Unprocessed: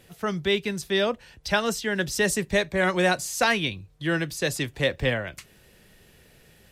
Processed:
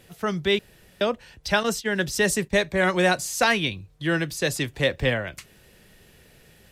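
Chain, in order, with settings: 0.59–1.01 s: room tone; 1.63–2.65 s: gate -31 dBFS, range -12 dB; trim +1.5 dB

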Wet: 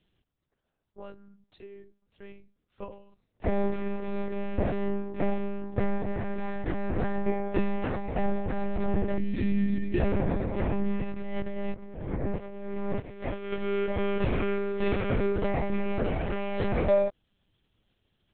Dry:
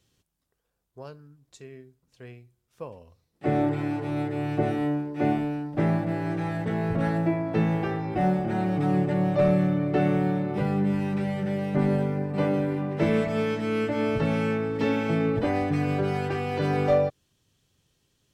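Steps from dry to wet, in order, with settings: 9.18–10.00 s: time-frequency box 450–1700 Hz -30 dB; 11.04–13.52 s: compressor with a negative ratio -30 dBFS, ratio -0.5; monotone LPC vocoder at 8 kHz 200 Hz; trim -1.5 dB

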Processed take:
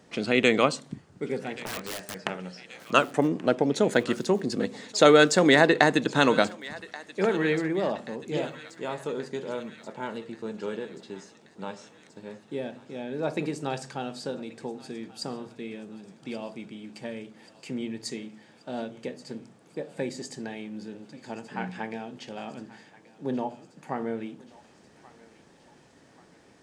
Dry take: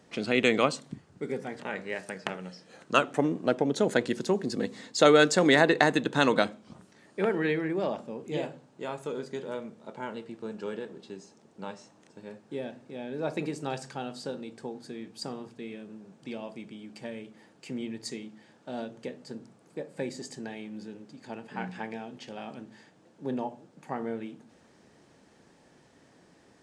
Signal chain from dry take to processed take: 1.66–2.16 s: integer overflow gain 31 dB; thinning echo 1131 ms, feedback 64%, high-pass 1 kHz, level -17 dB; trim +2.5 dB

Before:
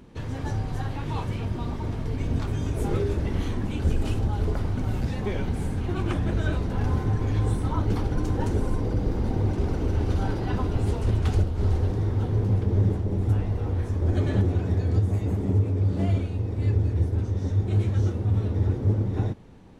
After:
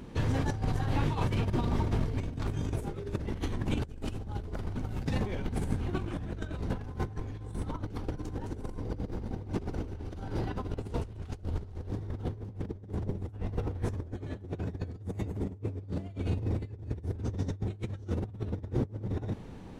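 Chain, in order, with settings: compressor with a negative ratio -30 dBFS, ratio -0.5; trim -2.5 dB

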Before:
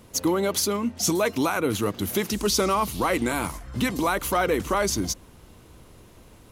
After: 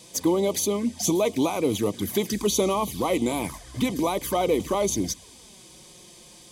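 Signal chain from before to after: touch-sensitive flanger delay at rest 6.7 ms, full sweep at -21 dBFS; band noise 2.5–10 kHz -52 dBFS; comb of notches 1.4 kHz; trim +2.5 dB

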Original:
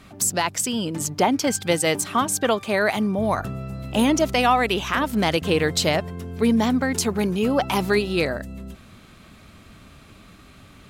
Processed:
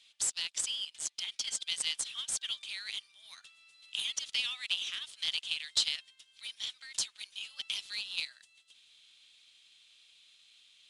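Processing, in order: ladder high-pass 2.9 kHz, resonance 55%; IMA ADPCM 88 kbps 22.05 kHz

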